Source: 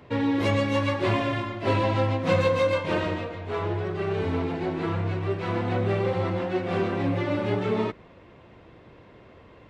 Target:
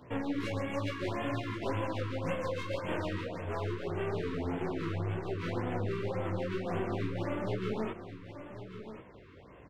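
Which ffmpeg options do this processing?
ffmpeg -i in.wav -af "acompressor=threshold=-26dB:ratio=6,aeval=exprs='clip(val(0),-1,0.0251)':channel_layout=same,flanger=delay=15.5:depth=7.5:speed=2.1,aecho=1:1:1085:0.266,afftfilt=real='re*(1-between(b*sr/1024,650*pow(5100/650,0.5+0.5*sin(2*PI*1.8*pts/sr))/1.41,650*pow(5100/650,0.5+0.5*sin(2*PI*1.8*pts/sr))*1.41))':imag='im*(1-between(b*sr/1024,650*pow(5100/650,0.5+0.5*sin(2*PI*1.8*pts/sr))/1.41,650*pow(5100/650,0.5+0.5*sin(2*PI*1.8*pts/sr))*1.41))':win_size=1024:overlap=0.75" out.wav

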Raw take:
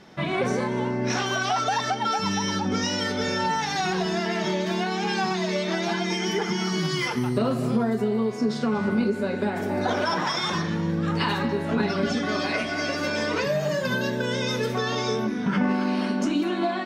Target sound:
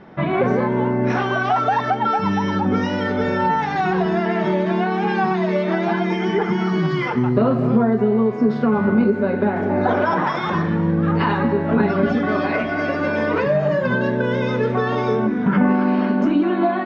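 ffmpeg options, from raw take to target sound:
ffmpeg -i in.wav -af "lowpass=1700,volume=7dB" out.wav

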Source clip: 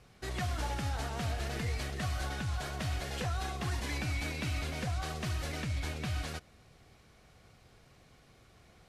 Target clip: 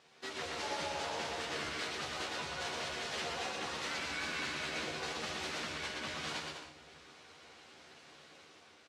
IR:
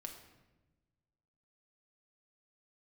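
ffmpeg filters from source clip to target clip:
-filter_complex "[0:a]bandreject=frequency=60:width_type=h:width=6,bandreject=frequency=120:width_type=h:width=6,bandreject=frequency=180:width_type=h:width=6,bandreject=frequency=240:width_type=h:width=6,bandreject=frequency=300:width_type=h:width=6,bandreject=frequency=360:width_type=h:width=6,bandreject=frequency=420:width_type=h:width=6,bandreject=frequency=480:width_type=h:width=6,bandreject=frequency=540:width_type=h:width=6,dynaudnorm=framelen=290:gausssize=5:maxgain=5.5dB,alimiter=level_in=2dB:limit=-24dB:level=0:latency=1:release=359,volume=-2dB,crystalizer=i=2.5:c=0,asplit=2[link_01][link_02];[link_02]asetrate=29433,aresample=44100,atempo=1.49831,volume=-1dB[link_03];[link_01][link_03]amix=inputs=2:normalize=0,asoftclip=type=tanh:threshold=-23dB,asplit=2[link_04][link_05];[link_05]asetrate=33038,aresample=44100,atempo=1.33484,volume=-6dB[link_06];[link_04][link_06]amix=inputs=2:normalize=0,highpass=300,lowpass=4700,asplit=2[link_07][link_08];[link_08]adelay=13,volume=-5dB[link_09];[link_07][link_09]amix=inputs=2:normalize=0,aecho=1:1:120|204|262.8|304|332.8:0.631|0.398|0.251|0.158|0.1,asplit=2[link_10][link_11];[1:a]atrim=start_sample=2205,asetrate=24255,aresample=44100,lowshelf=frequency=190:gain=9[link_12];[link_11][link_12]afir=irnorm=-1:irlink=0,volume=-10.5dB[link_13];[link_10][link_13]amix=inputs=2:normalize=0,volume=-8dB" -ar 32000 -c:a libmp3lame -b:a 64k

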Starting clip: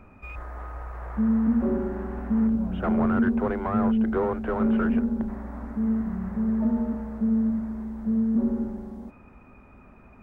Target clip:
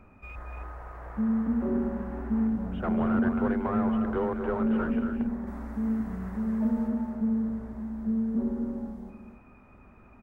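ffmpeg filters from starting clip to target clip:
ffmpeg -i in.wav -filter_complex "[0:a]asettb=1/sr,asplit=3[link_01][link_02][link_03];[link_01]atrim=end=5.474[link_04];[link_02]atrim=start=5.47:end=6.88,asetpts=PTS-STARTPTS,afade=type=in:duration=0.004:curve=qsin,afade=type=out:start_time=1.406:duration=0.004:curve=qsin,highshelf=frequency=2600:gain=9.5[link_05];[link_03]atrim=start=6.876[link_06];[link_04][link_05]acrossfade=duration=0.004:curve1=hsin:curve2=qsin[link_07];[link_07][link_06]acrossfade=duration=0.004:curve1=qsin:curve2=hsin,aecho=1:1:230.3|277:0.398|0.355,volume=-4dB" out.wav

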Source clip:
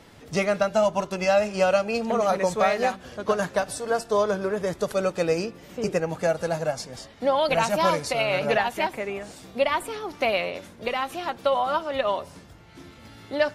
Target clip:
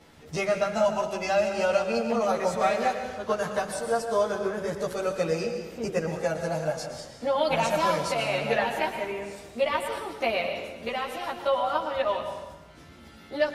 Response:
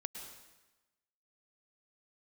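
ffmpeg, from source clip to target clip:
-filter_complex "[0:a]asplit=2[link_01][link_02];[1:a]atrim=start_sample=2205,adelay=13[link_03];[link_02][link_03]afir=irnorm=-1:irlink=0,volume=5dB[link_04];[link_01][link_04]amix=inputs=2:normalize=0,volume=-7.5dB"

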